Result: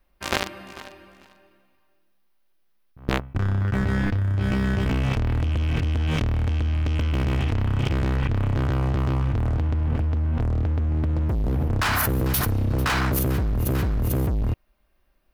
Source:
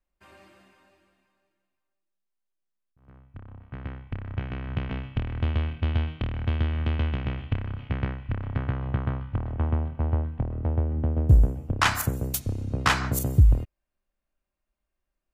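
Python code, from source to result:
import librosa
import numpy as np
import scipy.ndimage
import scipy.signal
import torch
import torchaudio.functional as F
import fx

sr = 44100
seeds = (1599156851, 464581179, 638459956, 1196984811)

y = fx.peak_eq(x, sr, hz=7400.0, db=-14.5, octaves=0.55)
y = fx.leveller(y, sr, passes=5)
y = fx.comb_fb(y, sr, f0_hz=100.0, decay_s=0.31, harmonics='all', damping=0.0, mix_pct=90, at=(3.38, 4.86))
y = fx.echo_feedback(y, sr, ms=445, feedback_pct=19, wet_db=-17)
y = fx.env_flatten(y, sr, amount_pct=100)
y = F.gain(torch.from_numpy(y), -14.0).numpy()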